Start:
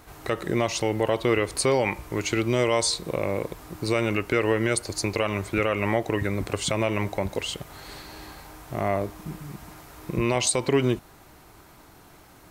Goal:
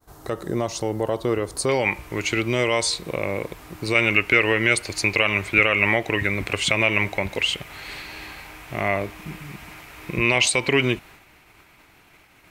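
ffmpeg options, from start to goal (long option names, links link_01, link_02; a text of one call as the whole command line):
ffmpeg -i in.wav -af "agate=range=-33dB:threshold=-45dB:ratio=3:detection=peak,asetnsamples=nb_out_samples=441:pad=0,asendcmd='1.69 equalizer g 7;3.95 equalizer g 14.5',equalizer=frequency=2400:width_type=o:width=0.98:gain=-10" out.wav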